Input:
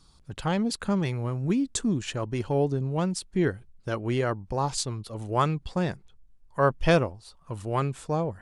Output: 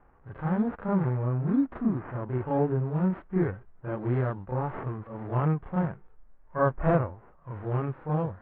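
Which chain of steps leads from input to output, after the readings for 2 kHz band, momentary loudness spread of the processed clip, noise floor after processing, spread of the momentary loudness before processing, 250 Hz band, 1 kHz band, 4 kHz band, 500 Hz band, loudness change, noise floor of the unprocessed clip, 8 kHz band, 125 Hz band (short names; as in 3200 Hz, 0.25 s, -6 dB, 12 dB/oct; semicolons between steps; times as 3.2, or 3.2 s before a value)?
-6.0 dB, 11 LU, -56 dBFS, 10 LU, 0.0 dB, -3.0 dB, under -25 dB, -2.5 dB, -1.5 dB, -57 dBFS, under -40 dB, +1.0 dB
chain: spectral whitening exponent 0.6; reverse echo 32 ms -5.5 dB; decimation with a swept rate 9×, swing 60% 2.1 Hz; harmonic-percussive split percussive -11 dB; LPF 1600 Hz 24 dB/oct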